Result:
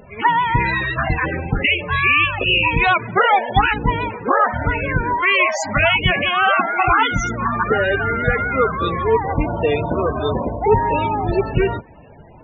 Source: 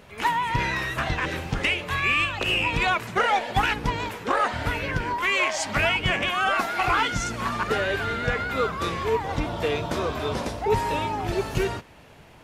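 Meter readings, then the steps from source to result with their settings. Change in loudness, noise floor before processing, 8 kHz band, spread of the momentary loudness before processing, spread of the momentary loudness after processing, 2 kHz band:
+7.0 dB, -49 dBFS, 0.0 dB, 6 LU, 6 LU, +7.0 dB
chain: loudest bins only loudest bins 32; gain +8 dB

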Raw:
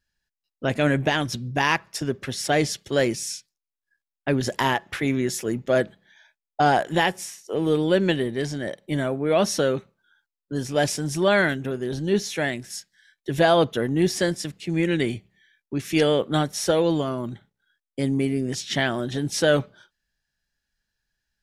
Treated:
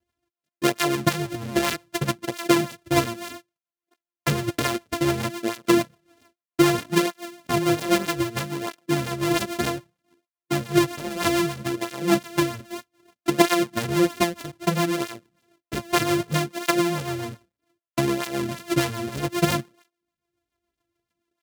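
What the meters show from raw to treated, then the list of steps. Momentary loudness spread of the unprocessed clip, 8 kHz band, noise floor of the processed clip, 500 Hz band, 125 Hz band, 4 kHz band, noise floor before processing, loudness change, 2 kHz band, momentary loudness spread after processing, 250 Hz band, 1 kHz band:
11 LU, +0.5 dB, under -85 dBFS, -3.0 dB, -1.0 dB, 0.0 dB, under -85 dBFS, -0.5 dB, -2.0 dB, 10 LU, +1.5 dB, -0.5 dB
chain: sample sorter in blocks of 128 samples; HPF 79 Hz; in parallel at -0.5 dB: compressor, threshold -30 dBFS, peak gain reduction 15.5 dB; on the sum: transient shaper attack +8 dB, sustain -4 dB; rotary speaker horn 7 Hz; tape flanging out of phase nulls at 0.63 Hz, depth 6.9 ms

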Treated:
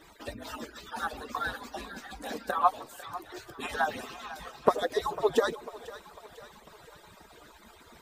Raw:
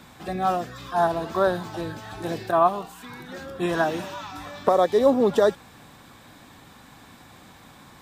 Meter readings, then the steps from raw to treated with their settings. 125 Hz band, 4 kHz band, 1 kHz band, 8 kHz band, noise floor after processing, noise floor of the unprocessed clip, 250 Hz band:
-14.0 dB, -3.0 dB, -6.5 dB, -2.0 dB, -55 dBFS, -50 dBFS, -13.0 dB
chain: median-filter separation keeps percussive; split-band echo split 500 Hz, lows 0.143 s, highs 0.498 s, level -15.5 dB

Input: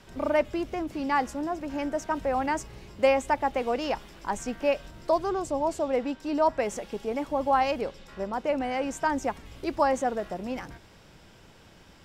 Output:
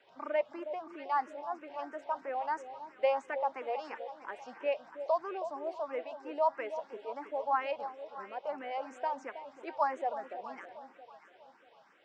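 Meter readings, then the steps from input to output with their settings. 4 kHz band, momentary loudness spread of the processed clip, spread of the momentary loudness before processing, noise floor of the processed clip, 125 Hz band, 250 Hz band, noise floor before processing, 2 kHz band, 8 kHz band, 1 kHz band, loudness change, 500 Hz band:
-12.0 dB, 13 LU, 9 LU, -62 dBFS, under -25 dB, -18.0 dB, -54 dBFS, -9.0 dB, under -20 dB, -6.0 dB, -8.0 dB, -8.0 dB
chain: HPF 660 Hz 12 dB/oct; tape spacing loss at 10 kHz 29 dB; on a send: echo with dull and thin repeats by turns 0.32 s, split 870 Hz, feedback 58%, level -9 dB; on the sum: endless phaser +3 Hz

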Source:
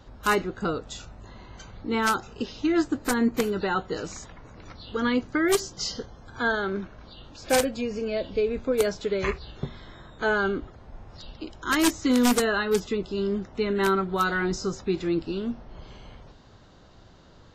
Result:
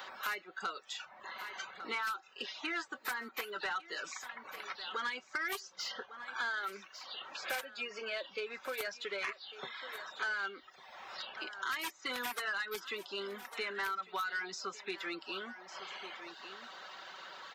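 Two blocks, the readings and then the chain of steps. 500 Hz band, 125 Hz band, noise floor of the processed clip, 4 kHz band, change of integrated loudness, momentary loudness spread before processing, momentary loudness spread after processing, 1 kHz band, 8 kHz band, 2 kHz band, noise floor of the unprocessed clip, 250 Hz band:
-18.5 dB, under -30 dB, -61 dBFS, -6.5 dB, -13.5 dB, 18 LU, 10 LU, -10.0 dB, -14.5 dB, -6.5 dB, -52 dBFS, -25.5 dB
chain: HPF 1400 Hz 12 dB/oct; reverb removal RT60 0.73 s; bell 7400 Hz -12 dB 1.7 oct; comb 5.3 ms, depth 36%; compressor 3:1, threshold -36 dBFS, peak gain reduction 10 dB; soft clip -32.5 dBFS, distortion -15 dB; on a send: echo 1.149 s -19.5 dB; on the sum: three-band squash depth 70%; gain +4 dB

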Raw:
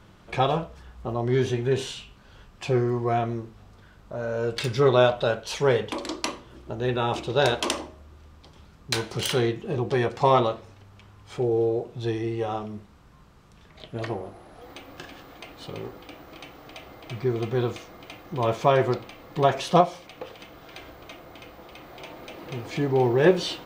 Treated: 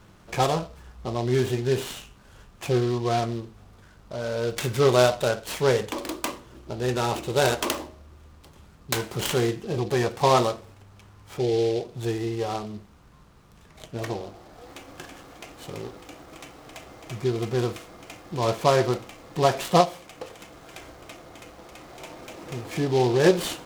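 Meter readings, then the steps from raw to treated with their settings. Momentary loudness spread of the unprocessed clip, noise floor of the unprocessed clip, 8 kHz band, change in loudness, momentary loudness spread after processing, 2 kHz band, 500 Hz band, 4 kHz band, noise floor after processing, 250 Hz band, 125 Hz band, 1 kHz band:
23 LU, -52 dBFS, +4.5 dB, 0.0 dB, 23 LU, 0.0 dB, 0.0 dB, +0.5 dB, -52 dBFS, 0.0 dB, 0.0 dB, 0.0 dB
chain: noise-modulated delay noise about 3500 Hz, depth 0.041 ms

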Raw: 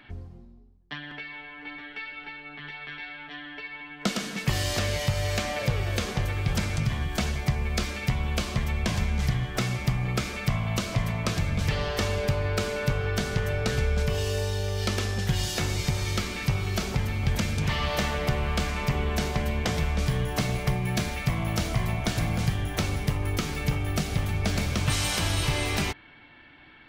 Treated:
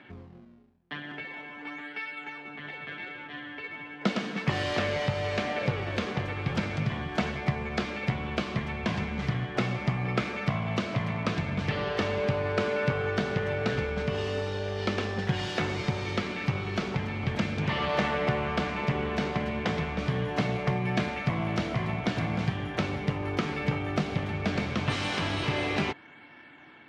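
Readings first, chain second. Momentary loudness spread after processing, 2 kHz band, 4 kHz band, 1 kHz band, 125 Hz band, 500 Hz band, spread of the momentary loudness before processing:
10 LU, 0.0 dB, -4.5 dB, +1.0 dB, -4.0 dB, +1.5 dB, 11 LU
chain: in parallel at -9 dB: decimation with a swept rate 30×, swing 160% 0.37 Hz; on the sum: BPF 160–3100 Hz

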